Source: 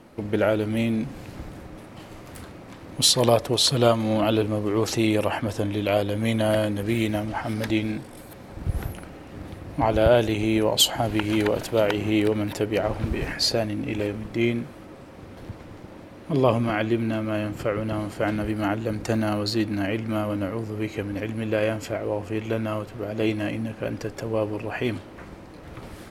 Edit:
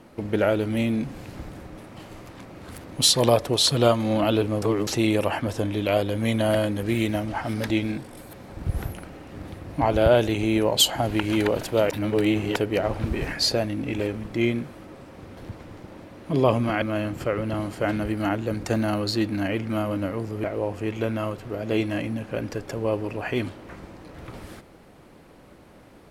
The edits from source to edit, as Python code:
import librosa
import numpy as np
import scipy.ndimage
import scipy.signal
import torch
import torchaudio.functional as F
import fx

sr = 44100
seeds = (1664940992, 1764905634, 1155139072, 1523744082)

y = fx.edit(x, sr, fx.reverse_span(start_s=2.29, length_s=0.55),
    fx.reverse_span(start_s=4.62, length_s=0.25),
    fx.reverse_span(start_s=11.9, length_s=0.66),
    fx.cut(start_s=16.82, length_s=0.39),
    fx.cut(start_s=20.83, length_s=1.1), tone=tone)